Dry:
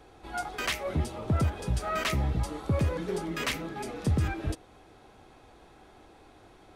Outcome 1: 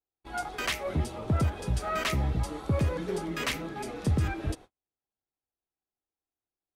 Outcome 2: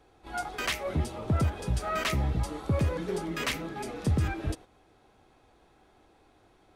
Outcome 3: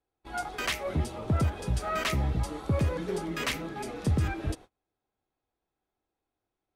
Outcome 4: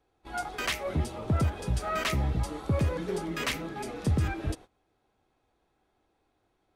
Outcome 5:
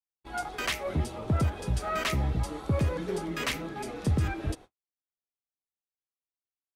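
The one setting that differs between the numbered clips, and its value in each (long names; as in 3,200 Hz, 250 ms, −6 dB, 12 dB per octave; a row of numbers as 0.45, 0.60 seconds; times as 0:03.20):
noise gate, range: −45, −7, −32, −19, −59 decibels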